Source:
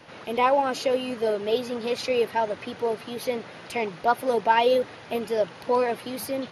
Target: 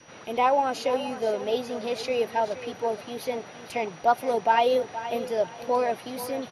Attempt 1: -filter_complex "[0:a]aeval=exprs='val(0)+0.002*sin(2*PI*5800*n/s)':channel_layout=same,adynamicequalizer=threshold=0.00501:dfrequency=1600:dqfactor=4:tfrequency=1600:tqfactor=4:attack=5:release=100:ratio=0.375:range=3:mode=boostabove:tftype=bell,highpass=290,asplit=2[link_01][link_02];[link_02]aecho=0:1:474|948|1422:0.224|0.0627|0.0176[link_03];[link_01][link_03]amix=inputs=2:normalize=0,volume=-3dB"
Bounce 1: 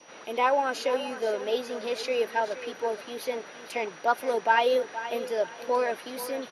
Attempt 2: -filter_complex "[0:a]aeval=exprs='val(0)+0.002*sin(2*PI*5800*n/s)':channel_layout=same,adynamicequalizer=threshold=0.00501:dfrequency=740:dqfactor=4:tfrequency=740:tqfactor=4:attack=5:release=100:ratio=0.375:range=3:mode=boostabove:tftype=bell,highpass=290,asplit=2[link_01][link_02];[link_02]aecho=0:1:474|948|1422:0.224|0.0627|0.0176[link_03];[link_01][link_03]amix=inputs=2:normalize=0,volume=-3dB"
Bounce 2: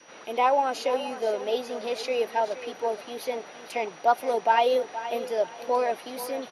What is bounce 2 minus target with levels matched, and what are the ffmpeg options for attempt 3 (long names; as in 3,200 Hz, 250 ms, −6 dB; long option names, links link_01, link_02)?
250 Hz band −4.0 dB
-filter_complex "[0:a]aeval=exprs='val(0)+0.002*sin(2*PI*5800*n/s)':channel_layout=same,adynamicequalizer=threshold=0.00501:dfrequency=740:dqfactor=4:tfrequency=740:tqfactor=4:attack=5:release=100:ratio=0.375:range=3:mode=boostabove:tftype=bell,asplit=2[link_01][link_02];[link_02]aecho=0:1:474|948|1422:0.224|0.0627|0.0176[link_03];[link_01][link_03]amix=inputs=2:normalize=0,volume=-3dB"